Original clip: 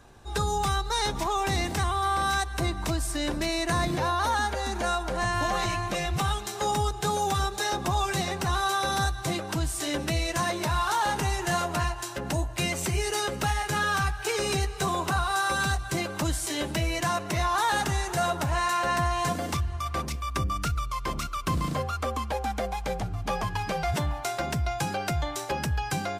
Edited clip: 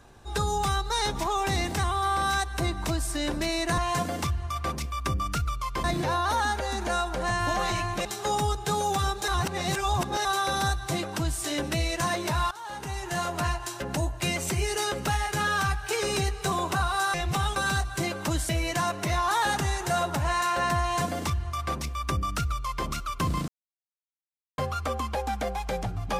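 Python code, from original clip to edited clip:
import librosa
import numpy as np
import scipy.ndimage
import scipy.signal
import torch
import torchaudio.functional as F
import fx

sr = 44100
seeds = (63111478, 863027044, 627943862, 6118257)

y = fx.edit(x, sr, fx.move(start_s=5.99, length_s=0.42, to_s=15.5),
    fx.reverse_span(start_s=7.64, length_s=0.97),
    fx.fade_in_from(start_s=10.87, length_s=0.98, floor_db=-20.5),
    fx.cut(start_s=16.43, length_s=0.33),
    fx.duplicate(start_s=19.08, length_s=2.06, to_s=3.78),
    fx.insert_silence(at_s=21.75, length_s=1.1), tone=tone)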